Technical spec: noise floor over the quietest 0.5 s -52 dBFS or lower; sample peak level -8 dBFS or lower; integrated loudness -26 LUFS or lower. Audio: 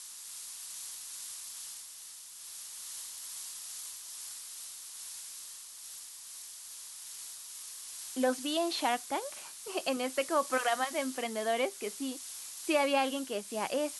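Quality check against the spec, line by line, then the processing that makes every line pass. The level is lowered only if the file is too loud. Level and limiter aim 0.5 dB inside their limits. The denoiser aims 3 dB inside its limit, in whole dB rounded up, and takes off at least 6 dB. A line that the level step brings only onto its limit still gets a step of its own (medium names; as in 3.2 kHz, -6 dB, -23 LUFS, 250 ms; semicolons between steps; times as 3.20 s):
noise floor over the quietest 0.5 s -49 dBFS: fail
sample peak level -15.5 dBFS: pass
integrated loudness -35.5 LUFS: pass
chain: noise reduction 6 dB, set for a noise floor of -49 dBFS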